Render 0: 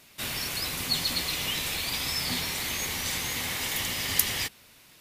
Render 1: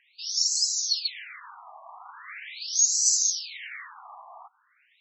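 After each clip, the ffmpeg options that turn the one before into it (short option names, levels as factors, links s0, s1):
-af "highshelf=f=4600:t=q:w=3:g=10,afftfilt=real='re*between(b*sr/1024,850*pow(5700/850,0.5+0.5*sin(2*PI*0.41*pts/sr))/1.41,850*pow(5700/850,0.5+0.5*sin(2*PI*0.41*pts/sr))*1.41)':imag='im*between(b*sr/1024,850*pow(5700/850,0.5+0.5*sin(2*PI*0.41*pts/sr))/1.41,850*pow(5700/850,0.5+0.5*sin(2*PI*0.41*pts/sr))*1.41)':win_size=1024:overlap=0.75"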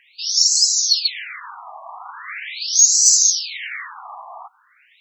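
-af "acontrast=60,volume=1.5"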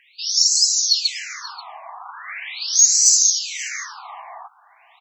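-af "aecho=1:1:533:0.119,volume=0.891"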